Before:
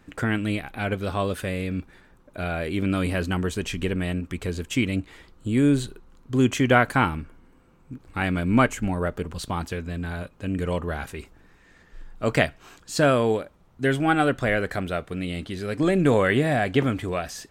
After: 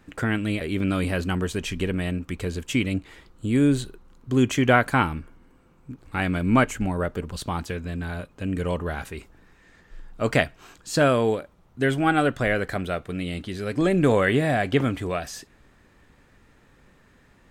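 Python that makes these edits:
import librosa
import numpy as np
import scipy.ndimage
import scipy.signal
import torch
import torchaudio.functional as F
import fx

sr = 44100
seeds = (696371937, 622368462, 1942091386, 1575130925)

y = fx.edit(x, sr, fx.cut(start_s=0.61, length_s=2.02), tone=tone)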